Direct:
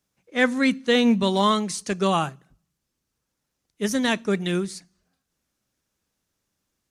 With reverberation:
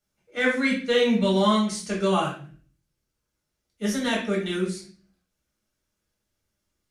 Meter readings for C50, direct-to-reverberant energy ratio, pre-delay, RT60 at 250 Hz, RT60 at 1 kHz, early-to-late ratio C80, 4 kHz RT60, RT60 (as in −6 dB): 5.5 dB, −4.5 dB, 3 ms, 0.70 s, 0.40 s, 11.0 dB, 0.40 s, 0.40 s